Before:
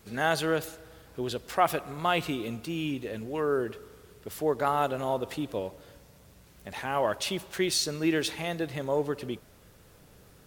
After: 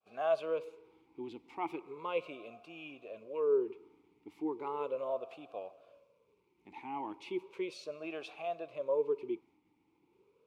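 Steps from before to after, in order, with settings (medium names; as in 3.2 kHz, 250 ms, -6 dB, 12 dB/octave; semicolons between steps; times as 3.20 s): expander -51 dBFS; talking filter a-u 0.36 Hz; trim +1.5 dB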